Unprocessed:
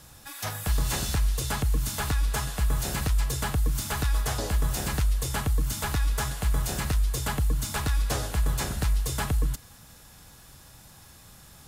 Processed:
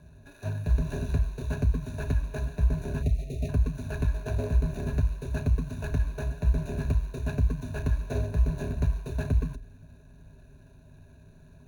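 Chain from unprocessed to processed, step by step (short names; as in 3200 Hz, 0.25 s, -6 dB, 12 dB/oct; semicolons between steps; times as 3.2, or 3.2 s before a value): median filter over 41 samples; ripple EQ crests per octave 1.5, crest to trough 15 dB; spectral delete 3.03–3.49, 790–1800 Hz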